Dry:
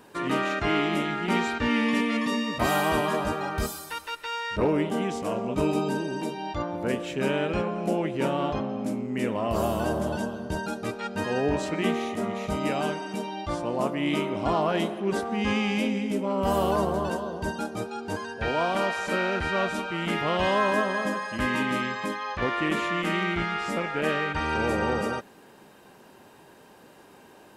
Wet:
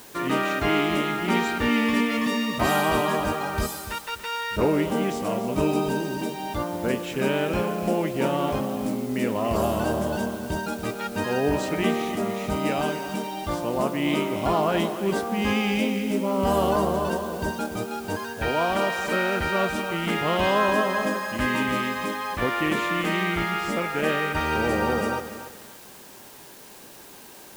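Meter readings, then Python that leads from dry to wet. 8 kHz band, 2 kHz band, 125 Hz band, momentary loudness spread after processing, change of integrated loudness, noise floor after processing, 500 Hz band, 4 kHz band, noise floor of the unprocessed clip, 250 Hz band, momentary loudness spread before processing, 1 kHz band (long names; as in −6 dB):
+4.5 dB, +2.0 dB, +2.0 dB, 8 LU, +2.5 dB, −45 dBFS, +2.5 dB, +2.5 dB, −52 dBFS, +2.0 dB, 7 LU, +2.5 dB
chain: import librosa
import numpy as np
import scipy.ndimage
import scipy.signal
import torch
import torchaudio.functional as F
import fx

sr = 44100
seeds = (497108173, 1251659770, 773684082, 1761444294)

p1 = fx.quant_dither(x, sr, seeds[0], bits=6, dither='triangular')
p2 = x + (p1 * librosa.db_to_amplitude(-11.5))
y = fx.echo_crushed(p2, sr, ms=287, feedback_pct=35, bits=7, wet_db=-11.5)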